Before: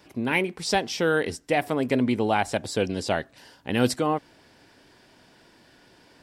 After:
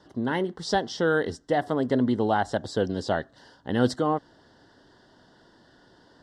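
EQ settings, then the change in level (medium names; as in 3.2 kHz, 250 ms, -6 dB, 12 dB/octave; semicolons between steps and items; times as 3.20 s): Butterworth band-stop 2.4 kHz, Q 2; distance through air 93 m; 0.0 dB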